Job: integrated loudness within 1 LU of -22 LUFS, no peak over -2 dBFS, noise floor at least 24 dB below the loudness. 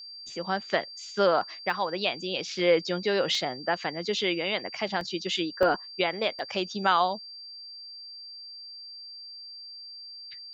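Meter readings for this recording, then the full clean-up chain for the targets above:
dropouts 5; longest dropout 1.3 ms; steady tone 4700 Hz; tone level -41 dBFS; loudness -28.0 LUFS; peak -10.0 dBFS; loudness target -22.0 LUFS
-> interpolate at 1.7/3.35/5.01/5.63/6.39, 1.3 ms; notch 4700 Hz, Q 30; gain +6 dB

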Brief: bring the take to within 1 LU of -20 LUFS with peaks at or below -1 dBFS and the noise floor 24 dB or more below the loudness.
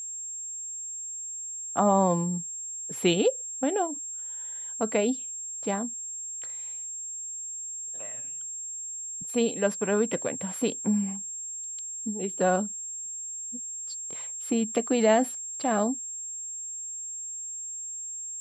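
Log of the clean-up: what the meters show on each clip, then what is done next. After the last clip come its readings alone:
steady tone 7500 Hz; tone level -34 dBFS; loudness -29.5 LUFS; peak -11.0 dBFS; loudness target -20.0 LUFS
-> notch 7500 Hz, Q 30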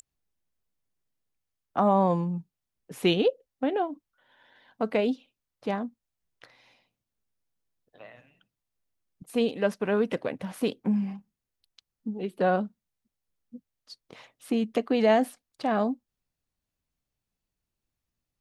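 steady tone none; loudness -28.0 LUFS; peak -11.5 dBFS; loudness target -20.0 LUFS
-> gain +8 dB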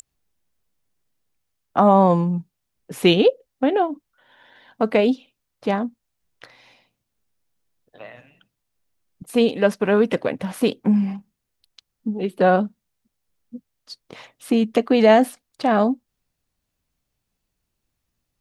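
loudness -20.0 LUFS; peak -3.5 dBFS; noise floor -79 dBFS

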